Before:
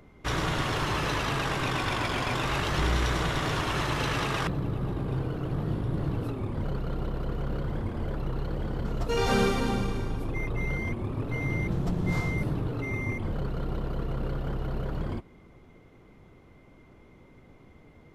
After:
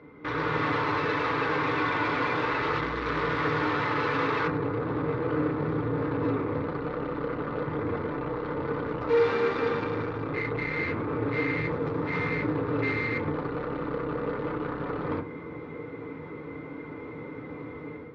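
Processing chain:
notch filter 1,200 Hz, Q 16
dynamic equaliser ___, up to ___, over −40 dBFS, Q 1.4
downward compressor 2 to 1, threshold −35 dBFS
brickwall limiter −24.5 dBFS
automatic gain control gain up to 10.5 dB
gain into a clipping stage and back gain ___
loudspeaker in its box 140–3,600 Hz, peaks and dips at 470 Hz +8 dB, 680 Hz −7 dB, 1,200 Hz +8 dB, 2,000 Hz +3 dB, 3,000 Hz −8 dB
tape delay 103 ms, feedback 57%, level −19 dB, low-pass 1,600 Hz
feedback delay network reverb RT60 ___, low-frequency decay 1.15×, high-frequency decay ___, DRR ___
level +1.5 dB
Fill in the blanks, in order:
200 Hz, −4 dB, 30.5 dB, 0.31 s, 0.5×, 2 dB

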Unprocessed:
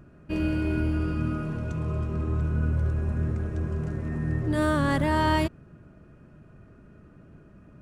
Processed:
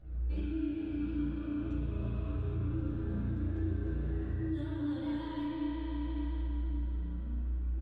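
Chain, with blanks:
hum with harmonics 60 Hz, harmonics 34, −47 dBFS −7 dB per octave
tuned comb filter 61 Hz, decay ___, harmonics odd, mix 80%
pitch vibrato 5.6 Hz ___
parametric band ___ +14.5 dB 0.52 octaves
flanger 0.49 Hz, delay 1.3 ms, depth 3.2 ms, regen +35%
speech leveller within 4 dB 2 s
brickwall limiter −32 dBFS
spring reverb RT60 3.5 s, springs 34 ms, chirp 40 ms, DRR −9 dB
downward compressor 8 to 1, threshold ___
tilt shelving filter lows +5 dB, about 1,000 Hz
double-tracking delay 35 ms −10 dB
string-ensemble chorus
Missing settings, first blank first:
0.7 s, 98 cents, 3,600 Hz, −33 dBFS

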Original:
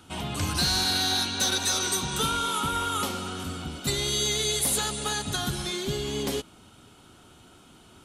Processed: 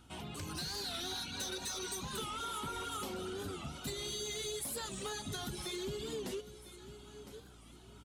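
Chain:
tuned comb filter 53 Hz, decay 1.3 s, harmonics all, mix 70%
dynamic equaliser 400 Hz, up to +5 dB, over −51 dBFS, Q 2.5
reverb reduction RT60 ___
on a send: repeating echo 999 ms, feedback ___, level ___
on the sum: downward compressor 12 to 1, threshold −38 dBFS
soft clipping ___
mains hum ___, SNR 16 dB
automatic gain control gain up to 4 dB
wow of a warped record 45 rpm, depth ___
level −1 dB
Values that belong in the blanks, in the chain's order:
0.89 s, 34%, −19 dB, −36 dBFS, 60 Hz, 160 cents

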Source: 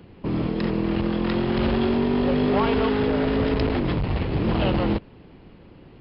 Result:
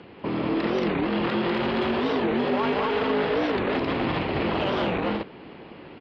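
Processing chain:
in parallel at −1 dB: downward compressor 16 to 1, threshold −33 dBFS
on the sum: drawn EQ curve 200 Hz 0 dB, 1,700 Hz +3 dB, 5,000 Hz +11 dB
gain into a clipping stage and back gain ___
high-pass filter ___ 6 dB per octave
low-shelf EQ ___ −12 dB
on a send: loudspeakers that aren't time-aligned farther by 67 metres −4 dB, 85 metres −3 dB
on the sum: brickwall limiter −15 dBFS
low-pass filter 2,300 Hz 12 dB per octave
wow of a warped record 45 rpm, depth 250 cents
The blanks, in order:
14.5 dB, 100 Hz, 190 Hz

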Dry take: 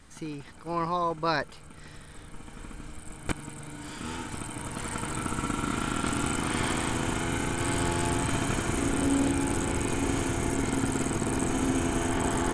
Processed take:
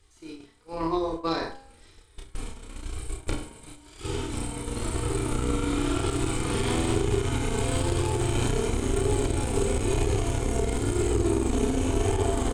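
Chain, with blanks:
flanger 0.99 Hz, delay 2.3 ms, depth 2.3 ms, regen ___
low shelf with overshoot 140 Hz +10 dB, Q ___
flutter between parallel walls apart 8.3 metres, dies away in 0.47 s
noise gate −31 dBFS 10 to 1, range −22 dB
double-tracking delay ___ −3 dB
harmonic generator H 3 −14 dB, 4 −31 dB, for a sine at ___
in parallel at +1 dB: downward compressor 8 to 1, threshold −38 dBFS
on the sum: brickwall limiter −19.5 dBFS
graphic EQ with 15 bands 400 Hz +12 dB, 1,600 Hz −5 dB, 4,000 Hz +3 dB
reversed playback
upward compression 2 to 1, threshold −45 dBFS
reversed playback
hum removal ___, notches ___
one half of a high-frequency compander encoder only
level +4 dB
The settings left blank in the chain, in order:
+17%, 1.5, 31 ms, −10.5 dBFS, 67.19 Hz, 33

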